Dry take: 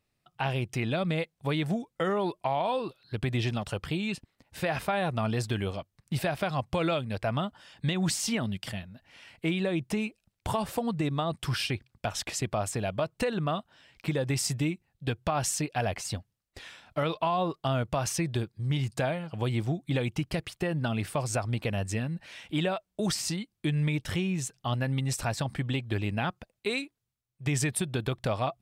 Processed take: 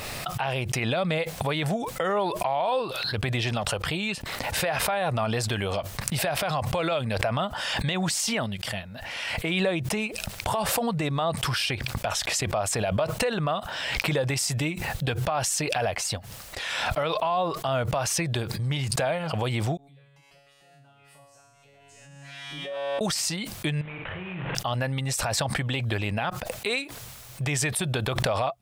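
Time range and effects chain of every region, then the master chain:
19.77–23.01 high shelf 4100 Hz -7 dB + compressor 5:1, threshold -39 dBFS + resonator 140 Hz, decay 1.2 s, mix 100%
23.81–24.55 CVSD 16 kbps + compressor 10:1, threshold -35 dBFS + flutter echo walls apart 7.6 m, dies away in 0.39 s
whole clip: resonant low shelf 430 Hz -6 dB, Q 1.5; limiter -24 dBFS; backwards sustainer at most 25 dB/s; gain +6.5 dB

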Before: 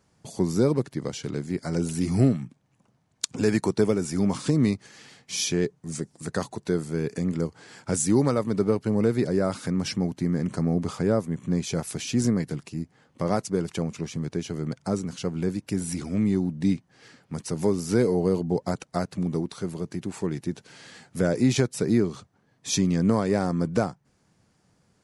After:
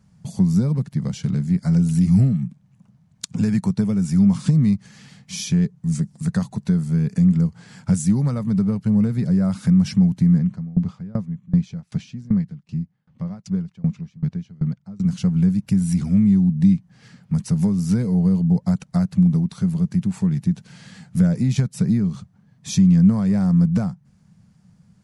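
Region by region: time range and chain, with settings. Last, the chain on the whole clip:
10.38–15.05 LPF 4700 Hz + dB-ramp tremolo decaying 2.6 Hz, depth 28 dB
whole clip: compressor 2:1, threshold -28 dBFS; resonant low shelf 250 Hz +9.5 dB, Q 3

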